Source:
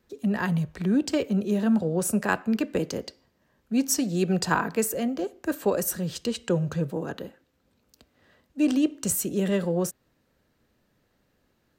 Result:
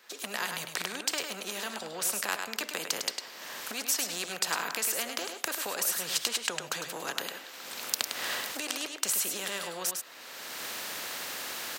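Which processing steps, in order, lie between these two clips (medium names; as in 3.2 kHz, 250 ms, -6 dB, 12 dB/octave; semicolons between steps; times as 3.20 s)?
recorder AGC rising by 35 dB/s; high-pass 830 Hz 12 dB/octave; peaking EQ 3.5 kHz +4 dB 2.6 oct; on a send: delay 103 ms -10.5 dB; on the sum: spectrum-flattening compressor 2:1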